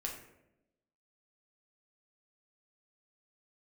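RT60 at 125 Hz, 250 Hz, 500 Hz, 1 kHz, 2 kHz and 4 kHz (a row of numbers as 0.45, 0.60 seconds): 1.0, 1.2, 1.0, 0.75, 0.70, 0.50 seconds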